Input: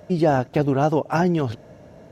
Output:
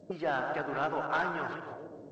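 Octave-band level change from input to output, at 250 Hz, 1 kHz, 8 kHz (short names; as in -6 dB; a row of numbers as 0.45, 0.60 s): -18.5 dB, -7.5 dB, n/a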